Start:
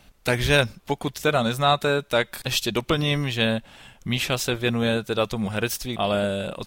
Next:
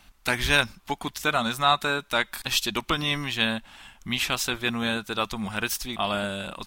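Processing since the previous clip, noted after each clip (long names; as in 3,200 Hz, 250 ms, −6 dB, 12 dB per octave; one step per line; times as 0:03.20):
octave-band graphic EQ 125/500/1,000 Hz −10/−11/+4 dB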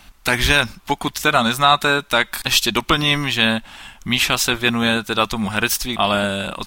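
boost into a limiter +10 dB
level −1 dB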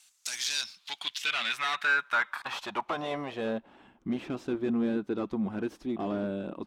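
hard clipping −17.5 dBFS, distortion −6 dB
band-pass filter sweep 7,800 Hz → 320 Hz, 0:00.04–0:03.94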